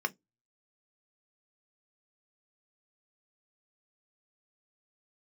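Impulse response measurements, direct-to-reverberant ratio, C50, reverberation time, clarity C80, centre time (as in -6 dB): 7.0 dB, 29.5 dB, 0.15 s, 40.5 dB, 3 ms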